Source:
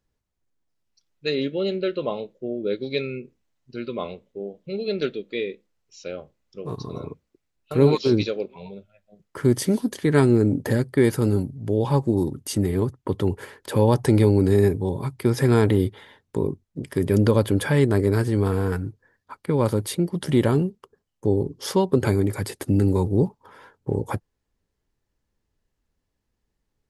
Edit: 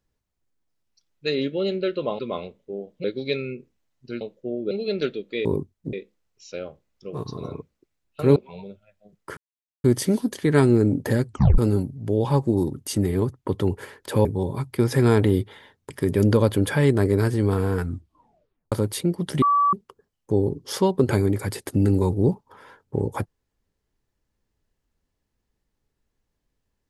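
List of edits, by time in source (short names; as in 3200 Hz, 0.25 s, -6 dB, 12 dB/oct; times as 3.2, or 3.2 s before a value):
2.19–2.69 swap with 3.86–4.71
7.88–8.43 cut
9.44 insert silence 0.47 s
10.86 tape stop 0.32 s
13.85–14.71 cut
16.36–16.84 move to 5.45
18.75 tape stop 0.91 s
20.36–20.67 bleep 1150 Hz -15.5 dBFS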